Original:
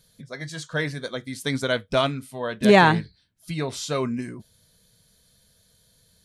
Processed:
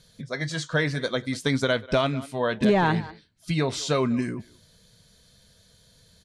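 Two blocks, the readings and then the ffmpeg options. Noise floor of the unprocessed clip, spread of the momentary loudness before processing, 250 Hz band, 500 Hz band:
-62 dBFS, 19 LU, -0.5 dB, -2.0 dB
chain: -filter_complex "[0:a]deesser=0.7,asplit=2[a][b];[b]adelay=190,highpass=300,lowpass=3.4k,asoftclip=type=hard:threshold=-13.5dB,volume=-22dB[c];[a][c]amix=inputs=2:normalize=0,asplit=2[d][e];[e]alimiter=limit=-14dB:level=0:latency=1:release=415,volume=-2dB[f];[d][f]amix=inputs=2:normalize=0,lowpass=7.6k,acompressor=threshold=-20dB:ratio=2.5"

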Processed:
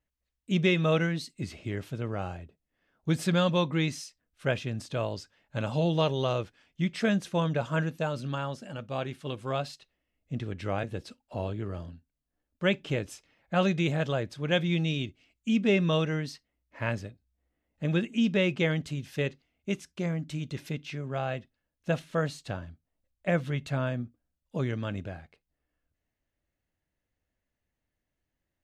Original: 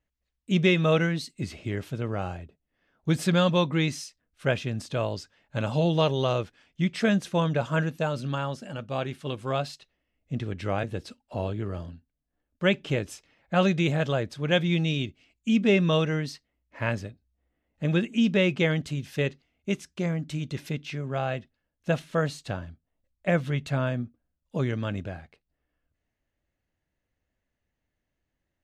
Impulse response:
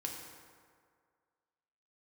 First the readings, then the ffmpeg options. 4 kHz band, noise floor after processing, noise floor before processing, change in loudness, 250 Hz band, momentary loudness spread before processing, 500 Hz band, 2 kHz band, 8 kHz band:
-3.0 dB, -85 dBFS, -83 dBFS, -3.0 dB, -3.0 dB, 14 LU, -3.0 dB, -3.0 dB, -3.0 dB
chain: -filter_complex "[0:a]asplit=2[a][b];[1:a]atrim=start_sample=2205,atrim=end_sample=3087[c];[b][c]afir=irnorm=-1:irlink=0,volume=-20dB[d];[a][d]amix=inputs=2:normalize=0,volume=-3.5dB"

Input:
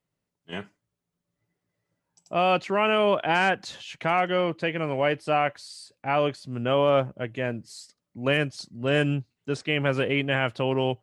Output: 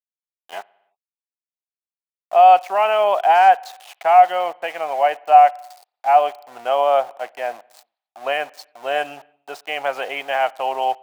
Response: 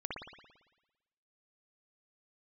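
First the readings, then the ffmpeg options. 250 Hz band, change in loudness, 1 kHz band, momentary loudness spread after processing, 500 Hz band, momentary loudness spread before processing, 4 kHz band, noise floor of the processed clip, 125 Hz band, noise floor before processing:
under -15 dB, +8.0 dB, +13.5 dB, 18 LU, +5.0 dB, 16 LU, -0.5 dB, under -85 dBFS, under -25 dB, -84 dBFS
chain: -filter_complex "[0:a]aeval=exprs='val(0)*gte(abs(val(0)),0.0141)':c=same,highpass=f=740:t=q:w=7.5,asplit=2[a][b];[1:a]atrim=start_sample=2205,afade=t=out:st=0.39:d=0.01,atrim=end_sample=17640[c];[b][c]afir=irnorm=-1:irlink=0,volume=-24.5dB[d];[a][d]amix=inputs=2:normalize=0,volume=-1dB"

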